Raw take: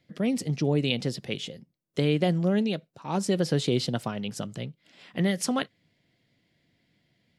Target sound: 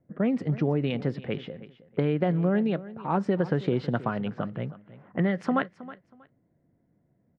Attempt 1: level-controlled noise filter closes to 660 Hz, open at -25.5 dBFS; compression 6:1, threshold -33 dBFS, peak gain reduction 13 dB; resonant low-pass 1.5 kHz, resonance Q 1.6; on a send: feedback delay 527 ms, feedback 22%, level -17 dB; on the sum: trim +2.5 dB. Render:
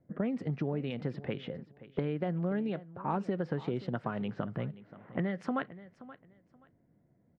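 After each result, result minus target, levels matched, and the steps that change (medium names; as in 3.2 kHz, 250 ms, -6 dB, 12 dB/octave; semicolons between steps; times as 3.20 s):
echo 208 ms late; compression: peak gain reduction +8.5 dB
change: feedback delay 319 ms, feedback 22%, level -17 dB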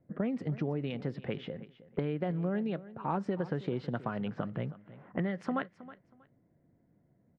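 compression: peak gain reduction +8.5 dB
change: compression 6:1, threshold -23 dBFS, peak gain reduction 5 dB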